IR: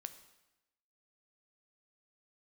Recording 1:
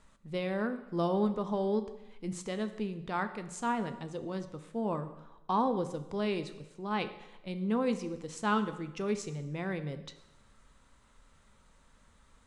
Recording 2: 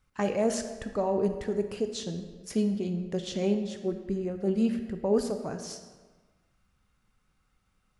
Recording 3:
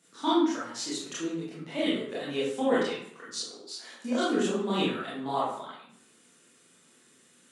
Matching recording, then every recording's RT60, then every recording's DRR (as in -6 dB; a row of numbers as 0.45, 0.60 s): 1; 0.95, 1.4, 0.60 s; 9.5, 7.0, -9.0 dB